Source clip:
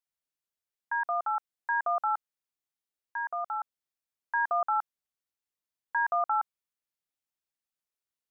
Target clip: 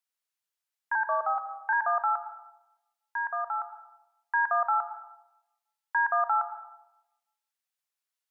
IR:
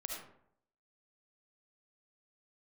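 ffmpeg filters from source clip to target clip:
-filter_complex "[0:a]highpass=710,asettb=1/sr,asplit=3[link_01][link_02][link_03];[link_01]atrim=end=0.954[link_04];[link_02]atrim=start=0.95:end=1.73,asetpts=PTS-STARTPTS,afade=type=in:duration=0.004:curve=qsin,afade=type=out:start_time=0.776:duration=0.004:curve=qsin,afreqshift=-60[link_05];[link_03]atrim=start=1.726[link_06];[link_04][link_05]acrossfade=duration=0.004:curve1=hsin:curve2=qsin[link_07];[link_07][link_06]acrossfade=duration=0.004:curve1=qsin:curve2=hsin,asplit=2[link_08][link_09];[1:a]atrim=start_sample=2205,asetrate=29988,aresample=44100[link_10];[link_09][link_10]afir=irnorm=-1:irlink=0,volume=-5.5dB[link_11];[link_08][link_11]amix=inputs=2:normalize=0"

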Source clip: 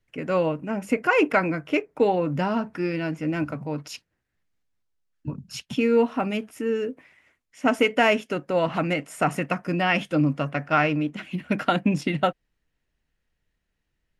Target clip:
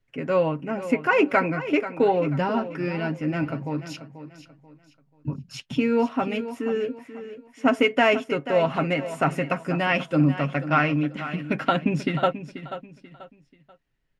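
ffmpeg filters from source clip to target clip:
ffmpeg -i in.wav -af "highshelf=frequency=7100:gain=-11,aecho=1:1:7.4:0.42,aecho=1:1:486|972|1458:0.237|0.0759|0.0243" out.wav

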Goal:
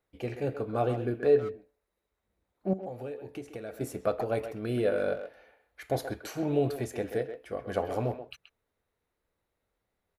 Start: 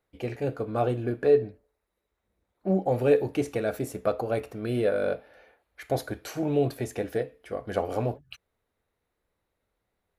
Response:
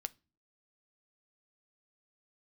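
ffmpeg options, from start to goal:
-filter_complex "[0:a]asettb=1/sr,asplit=3[link_01][link_02][link_03];[link_01]atrim=end=2.734[link_04];[link_02]atrim=start=2.73:end=3.81,asetpts=PTS-STARTPTS,afade=type=in:duration=0.004:curve=qsin,afade=type=out:start_time=1.076:duration=0.004:curve=qsin,acompressor=threshold=-34dB:ratio=10[link_05];[link_03]atrim=start=3.806[link_06];[link_04][link_05]acrossfade=duration=0.004:curve1=hsin:curve2=qsin[link_07];[link_07][link_06]acrossfade=duration=0.004:curve1=qsin:curve2=hsin,asplit=2[link_08][link_09];[link_09]adelay=130,highpass=300,lowpass=3400,asoftclip=type=hard:threshold=-19.5dB,volume=-9dB[link_10];[link_08][link_10]amix=inputs=2:normalize=0,volume=-2.5dB"

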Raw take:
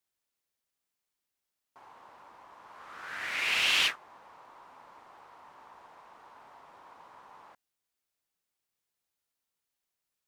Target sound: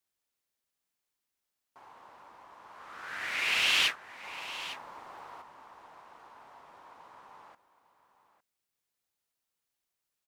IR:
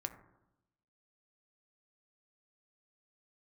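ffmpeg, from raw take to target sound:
-filter_complex "[0:a]asettb=1/sr,asplit=3[link_01][link_02][link_03];[link_01]atrim=end=4.234[link_04];[link_02]atrim=start=4.23:end=5.42,asetpts=PTS-STARTPTS,afade=type=in:duration=0.004:curve=qsin,afade=type=out:start_time=1.186:duration=0.004:curve=qsin,acontrast=71[link_05];[link_03]atrim=start=5.416[link_06];[link_04][link_05]acrossfade=duration=0.004:curve1=hsin:curve2=qsin[link_07];[link_07][link_06]acrossfade=duration=0.004:curve1=qsin:curve2=hsin,asplit=2[link_08][link_09];[link_09]aecho=0:1:856:0.188[link_10];[link_08][link_10]amix=inputs=2:normalize=0"

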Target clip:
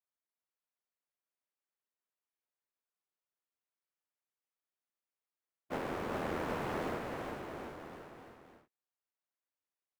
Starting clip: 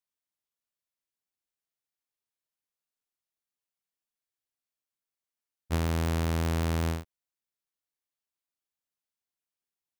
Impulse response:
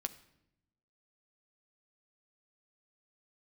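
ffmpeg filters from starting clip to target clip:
-filter_complex "[0:a]acrossover=split=250 2400:gain=0.0794 1 0.224[link_01][link_02][link_03];[link_01][link_02][link_03]amix=inputs=3:normalize=0,afftfilt=real='hypot(re,im)*cos(2*PI*random(0))':imag='hypot(re,im)*sin(2*PI*random(1))':win_size=512:overlap=0.75,aecho=1:1:400|760|1084|1376|1638:0.631|0.398|0.251|0.158|0.1,volume=3.5dB"

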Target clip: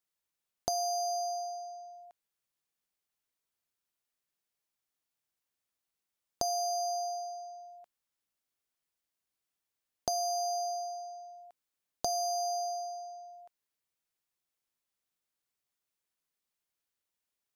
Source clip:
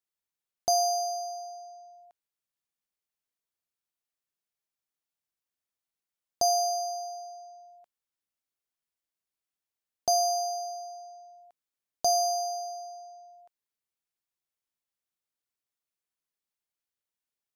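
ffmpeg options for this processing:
ffmpeg -i in.wav -af "acompressor=threshold=-33dB:ratio=10,volume=2.5dB" out.wav

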